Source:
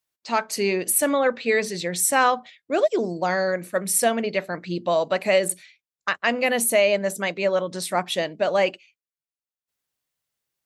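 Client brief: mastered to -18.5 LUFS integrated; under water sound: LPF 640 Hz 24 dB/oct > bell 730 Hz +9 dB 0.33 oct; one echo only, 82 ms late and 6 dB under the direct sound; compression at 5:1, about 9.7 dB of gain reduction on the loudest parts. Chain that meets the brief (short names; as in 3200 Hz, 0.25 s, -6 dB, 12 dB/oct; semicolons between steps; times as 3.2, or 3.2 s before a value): compressor 5:1, threshold -25 dBFS; LPF 640 Hz 24 dB/oct; bell 730 Hz +9 dB 0.33 oct; echo 82 ms -6 dB; gain +11.5 dB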